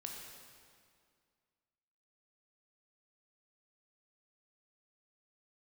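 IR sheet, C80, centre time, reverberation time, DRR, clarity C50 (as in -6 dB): 3.0 dB, 84 ms, 2.1 s, 0.0 dB, 1.5 dB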